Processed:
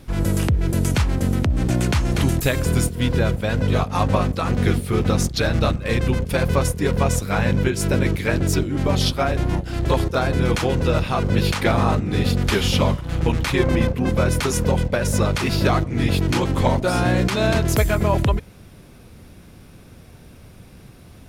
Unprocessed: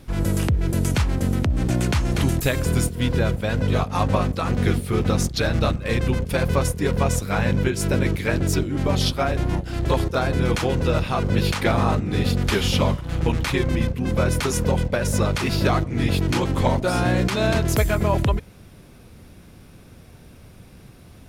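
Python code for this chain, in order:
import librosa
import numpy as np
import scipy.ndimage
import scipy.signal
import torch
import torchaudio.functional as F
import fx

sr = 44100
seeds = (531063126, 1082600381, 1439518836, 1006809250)

y = fx.peak_eq(x, sr, hz=740.0, db=6.5, octaves=2.5, at=(13.58, 14.1))
y = y * librosa.db_to_amplitude(1.5)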